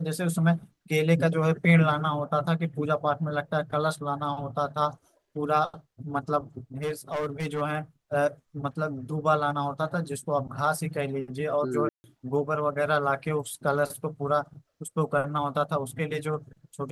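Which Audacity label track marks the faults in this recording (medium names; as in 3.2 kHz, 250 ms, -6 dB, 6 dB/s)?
6.830000	7.620000	clipped -25 dBFS
11.890000	12.040000	dropout 150 ms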